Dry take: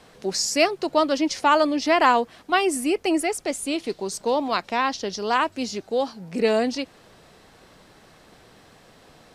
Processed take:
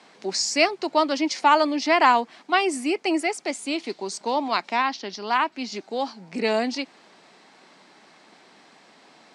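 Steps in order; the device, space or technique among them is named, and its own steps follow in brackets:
0:04.82–0:05.72: octave-band graphic EQ 125/500/8,000 Hz −4/−4/−10 dB
television speaker (loudspeaker in its box 200–8,400 Hz, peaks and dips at 490 Hz −6 dB, 890 Hz +4 dB, 2,200 Hz +5 dB, 4,500 Hz +3 dB)
level −1 dB

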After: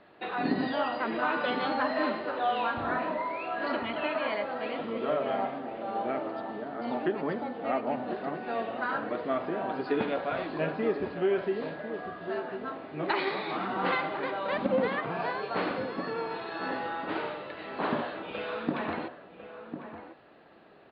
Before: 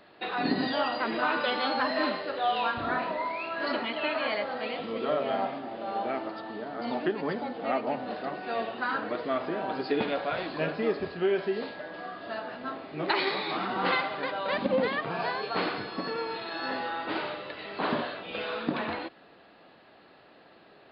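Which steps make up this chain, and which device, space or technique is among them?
shout across a valley (high-frequency loss of the air 260 metres; slap from a distant wall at 180 metres, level −9 dB)

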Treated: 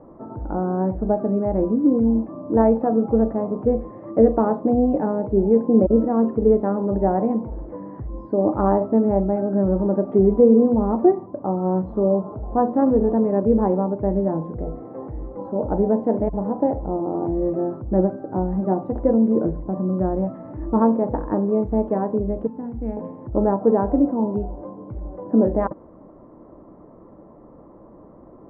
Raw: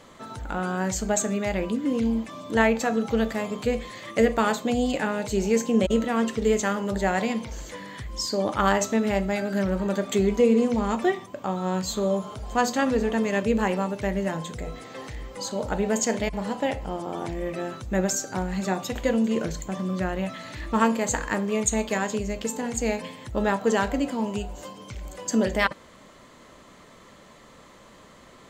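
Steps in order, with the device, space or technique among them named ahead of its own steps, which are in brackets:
under water (low-pass filter 890 Hz 24 dB per octave; parametric band 320 Hz +9 dB 0.31 octaves)
0:22.47–0:22.97: parametric band 560 Hz −12.5 dB 2.2 octaves
level +5 dB

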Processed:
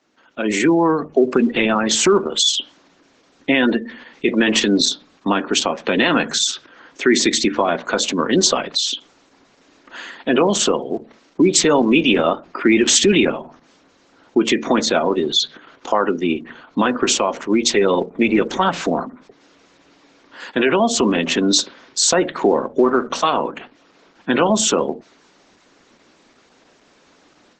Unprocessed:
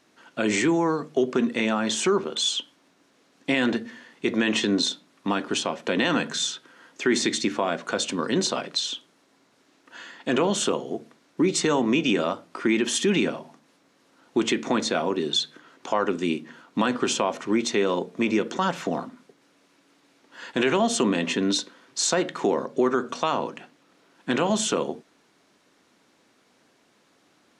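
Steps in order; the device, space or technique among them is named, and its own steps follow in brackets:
noise-suppressed video call (high-pass filter 160 Hz 12 dB per octave; gate on every frequency bin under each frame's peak −25 dB strong; automatic gain control gain up to 12 dB; level −1.5 dB; Opus 12 kbit/s 48,000 Hz)

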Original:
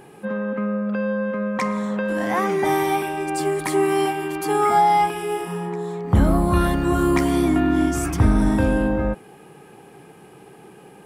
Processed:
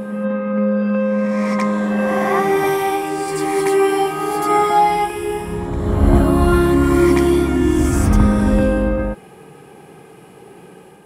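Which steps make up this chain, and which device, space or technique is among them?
reverse reverb (reversed playback; convolution reverb RT60 1.6 s, pre-delay 66 ms, DRR −1 dB; reversed playback)

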